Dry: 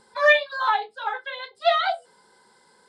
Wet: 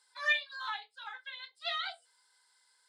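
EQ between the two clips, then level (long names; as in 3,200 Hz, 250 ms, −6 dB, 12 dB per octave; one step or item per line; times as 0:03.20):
Bessel high-pass filter 2,400 Hz, order 2
−6.0 dB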